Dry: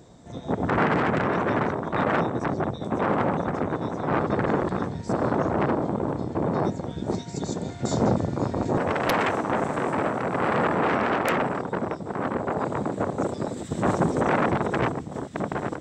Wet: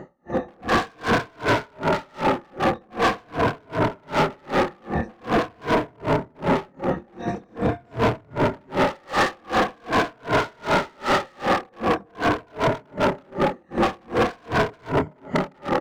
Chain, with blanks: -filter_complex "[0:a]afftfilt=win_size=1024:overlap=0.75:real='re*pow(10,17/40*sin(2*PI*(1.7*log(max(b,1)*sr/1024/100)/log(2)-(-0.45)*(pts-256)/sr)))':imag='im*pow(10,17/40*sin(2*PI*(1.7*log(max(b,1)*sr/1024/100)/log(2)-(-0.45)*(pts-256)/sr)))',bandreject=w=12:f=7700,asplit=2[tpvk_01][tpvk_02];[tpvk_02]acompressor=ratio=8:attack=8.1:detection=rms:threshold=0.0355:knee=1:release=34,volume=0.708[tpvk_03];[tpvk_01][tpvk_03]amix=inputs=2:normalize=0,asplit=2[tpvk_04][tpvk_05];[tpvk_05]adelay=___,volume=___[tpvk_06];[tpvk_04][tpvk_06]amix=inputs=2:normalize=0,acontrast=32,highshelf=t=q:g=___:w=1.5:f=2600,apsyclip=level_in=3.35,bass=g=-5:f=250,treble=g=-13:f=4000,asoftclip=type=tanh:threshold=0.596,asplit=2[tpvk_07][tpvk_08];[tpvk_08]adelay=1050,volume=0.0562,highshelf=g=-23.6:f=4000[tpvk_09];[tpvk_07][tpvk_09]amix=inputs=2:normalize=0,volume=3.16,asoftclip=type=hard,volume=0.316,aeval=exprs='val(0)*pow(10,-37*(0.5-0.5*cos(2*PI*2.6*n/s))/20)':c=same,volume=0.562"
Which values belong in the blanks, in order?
26, 0.447, -10